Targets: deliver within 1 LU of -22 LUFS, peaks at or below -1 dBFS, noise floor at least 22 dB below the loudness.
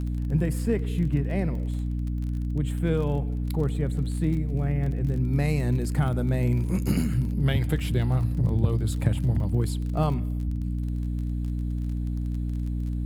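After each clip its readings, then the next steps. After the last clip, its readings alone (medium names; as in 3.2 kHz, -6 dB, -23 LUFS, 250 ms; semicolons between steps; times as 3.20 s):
tick rate 31 per s; hum 60 Hz; highest harmonic 300 Hz; hum level -26 dBFS; loudness -27.0 LUFS; peak level -8.5 dBFS; loudness target -22.0 LUFS
-> de-click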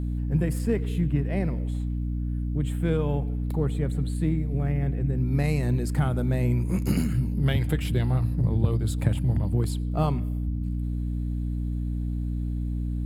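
tick rate 0.077 per s; hum 60 Hz; highest harmonic 300 Hz; hum level -26 dBFS
-> de-hum 60 Hz, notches 5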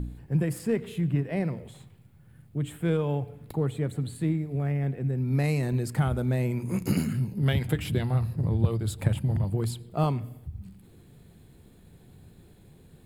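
hum not found; loudness -28.5 LUFS; peak level -9.5 dBFS; loudness target -22.0 LUFS
-> trim +6.5 dB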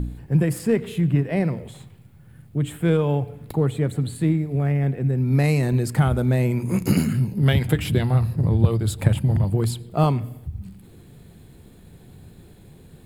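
loudness -22.0 LUFS; peak level -3.0 dBFS; noise floor -48 dBFS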